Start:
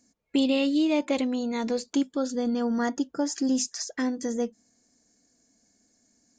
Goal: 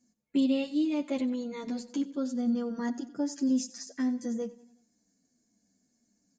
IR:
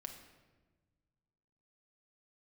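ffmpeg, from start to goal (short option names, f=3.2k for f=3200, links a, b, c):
-filter_complex "[0:a]equalizer=f=190:w=1.3:g=9.5,asplit=2[a][b];[b]aecho=0:1:92|184|276|368:0.133|0.0667|0.0333|0.0167[c];[a][c]amix=inputs=2:normalize=0,asplit=2[d][e];[e]adelay=9.1,afreqshift=-1.7[f];[d][f]amix=inputs=2:normalize=1,volume=-6.5dB"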